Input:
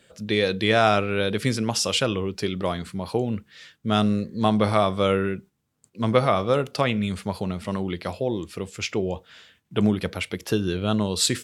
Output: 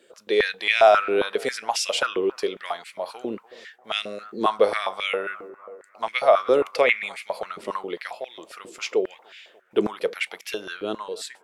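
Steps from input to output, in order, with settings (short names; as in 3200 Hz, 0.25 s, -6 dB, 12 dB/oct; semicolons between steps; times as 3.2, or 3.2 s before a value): ending faded out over 0.78 s; 6.62–7.09 bell 2200 Hz +12 dB 0.41 oct; analogue delay 0.294 s, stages 4096, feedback 60%, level -22 dB; stepped high-pass 7.4 Hz 360–2300 Hz; gain -3 dB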